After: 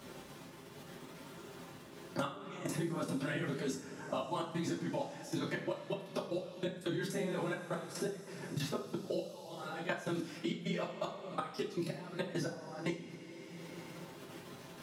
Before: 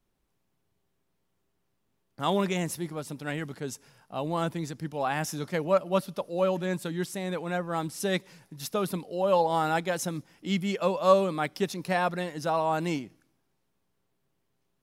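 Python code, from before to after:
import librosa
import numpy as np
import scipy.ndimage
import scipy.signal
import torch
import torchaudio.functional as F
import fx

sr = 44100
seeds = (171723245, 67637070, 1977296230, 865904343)

y = fx.phase_scramble(x, sr, seeds[0], window_ms=50)
y = fx.gate_flip(y, sr, shuts_db=-20.0, range_db=-25)
y = fx.level_steps(y, sr, step_db=21)
y = scipy.signal.sosfilt(scipy.signal.butter(2, 140.0, 'highpass', fs=sr, output='sos'), y)
y = fx.high_shelf(y, sr, hz=9600.0, db=-11.0)
y = fx.notch(y, sr, hz=740.0, q=14.0)
y = fx.rev_double_slope(y, sr, seeds[1], early_s=0.33, late_s=2.1, knee_db=-17, drr_db=-0.5)
y = fx.band_squash(y, sr, depth_pct=100)
y = y * 10.0 ** (4.0 / 20.0)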